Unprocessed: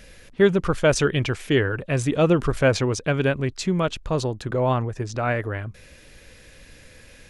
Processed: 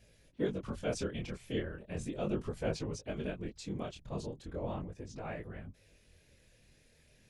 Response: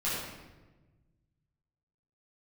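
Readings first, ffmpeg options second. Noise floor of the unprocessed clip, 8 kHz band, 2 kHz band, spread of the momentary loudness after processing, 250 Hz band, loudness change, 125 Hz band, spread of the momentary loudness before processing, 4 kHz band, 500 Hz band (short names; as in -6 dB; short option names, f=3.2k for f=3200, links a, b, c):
-49 dBFS, -16.5 dB, -21.0 dB, 8 LU, -14.5 dB, -17.0 dB, -17.5 dB, 7 LU, -17.0 dB, -17.0 dB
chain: -af "afftfilt=real='hypot(re,im)*cos(2*PI*random(0))':imag='hypot(re,im)*sin(2*PI*random(1))':win_size=512:overlap=0.75,flanger=delay=18.5:depth=7.8:speed=0.37,equalizer=f=1.4k:w=1.1:g=-6.5,volume=-7dB"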